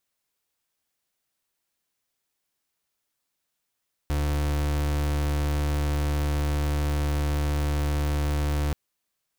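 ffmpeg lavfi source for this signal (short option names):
-f lavfi -i "aevalsrc='0.0562*(2*lt(mod(73.7*t,1),0.36)-1)':d=4.63:s=44100"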